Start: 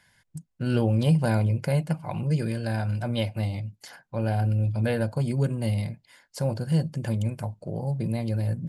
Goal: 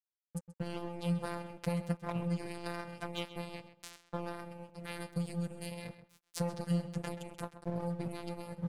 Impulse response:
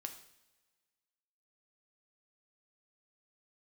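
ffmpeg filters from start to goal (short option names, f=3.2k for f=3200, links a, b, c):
-filter_complex "[0:a]asettb=1/sr,asplit=3[a][b][c];[a]atrim=end=4.734[d];[b]atrim=start=4.73:end=5.72,asetpts=PTS-STARTPTS,afade=t=in:d=0.004:c=qsin,afade=t=out:st=0.986:d=0.004:c=qsin,equalizer=f=680:t=o:w=2.4:g=-13[e];[c]atrim=start=5.716[f];[d][e]acrossfade=d=0.004:c1=hsin:c2=qsin[g];[g][f]acrossfade=d=0.004:c1=qsin:c2=hsin,acompressor=threshold=-29dB:ratio=12,afftfilt=real='hypot(re,im)*cos(PI*b)':imag='0':win_size=1024:overlap=0.75,aeval=exprs='sgn(val(0))*max(abs(val(0))-0.00708,0)':c=same,asplit=2[h][i];[i]adelay=131,lowpass=f=4.5k:p=1,volume=-12.5dB,asplit=2[j][k];[k]adelay=131,lowpass=f=4.5k:p=1,volume=0.18[l];[h][j][l]amix=inputs=3:normalize=0,volume=3.5dB"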